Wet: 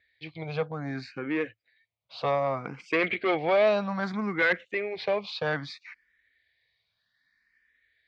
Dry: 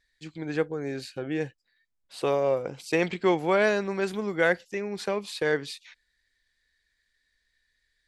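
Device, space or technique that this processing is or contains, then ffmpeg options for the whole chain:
barber-pole phaser into a guitar amplifier: -filter_complex "[0:a]asplit=2[s0][s1];[s1]afreqshift=0.63[s2];[s0][s2]amix=inputs=2:normalize=1,asoftclip=type=tanh:threshold=0.0668,highpass=90,equalizer=f=110:t=q:w=4:g=9,equalizer=f=370:t=q:w=4:g=-4,equalizer=f=660:t=q:w=4:g=5,equalizer=f=1200:t=q:w=4:g=5,equalizer=f=2200:t=q:w=4:g=8,lowpass=f=4400:w=0.5412,lowpass=f=4400:w=1.3066,volume=1.5"

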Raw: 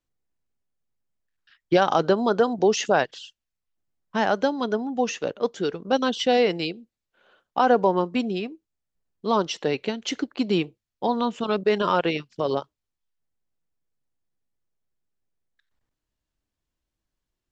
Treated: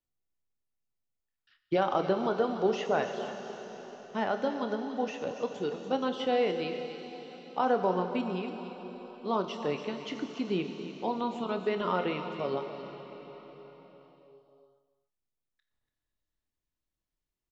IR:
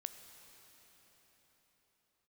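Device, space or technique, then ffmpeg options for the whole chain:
cave: -filter_complex "[0:a]bandreject=f=1600:w=13,aecho=1:1:286:0.211[s0];[1:a]atrim=start_sample=2205[s1];[s0][s1]afir=irnorm=-1:irlink=0,acrossover=split=3500[s2][s3];[s3]acompressor=threshold=0.00282:ratio=4:attack=1:release=60[s4];[s2][s4]amix=inputs=2:normalize=0,asplit=2[s5][s6];[s6]adelay=27,volume=0.266[s7];[s5][s7]amix=inputs=2:normalize=0,volume=0.596"

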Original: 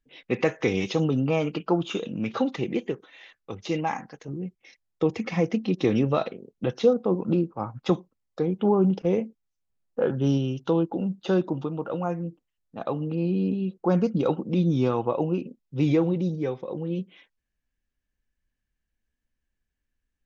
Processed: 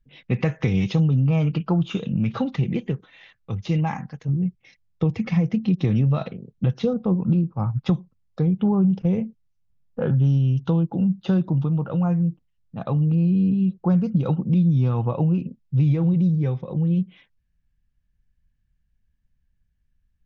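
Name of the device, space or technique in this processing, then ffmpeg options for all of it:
jukebox: -af "lowpass=5500,lowshelf=f=220:t=q:w=1.5:g=13,acompressor=threshold=0.141:ratio=4"

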